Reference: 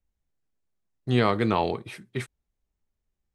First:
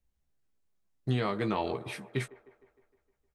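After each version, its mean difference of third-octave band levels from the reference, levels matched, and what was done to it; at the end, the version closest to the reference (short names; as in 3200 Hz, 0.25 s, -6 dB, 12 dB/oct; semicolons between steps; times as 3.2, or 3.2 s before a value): 4.5 dB: compressor 3:1, threshold -29 dBFS, peak gain reduction 10 dB; doubler 15 ms -6.5 dB; on a send: band-limited delay 0.154 s, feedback 57%, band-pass 700 Hz, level -15 dB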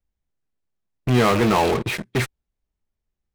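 8.5 dB: rattling part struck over -31 dBFS, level -32 dBFS; high shelf 8600 Hz -11 dB; in parallel at -8 dB: fuzz box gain 42 dB, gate -47 dBFS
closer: first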